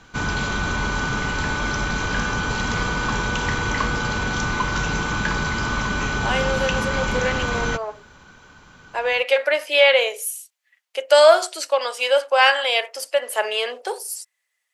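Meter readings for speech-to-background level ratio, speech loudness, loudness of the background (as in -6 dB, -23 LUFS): 3.5 dB, -20.0 LUFS, -23.5 LUFS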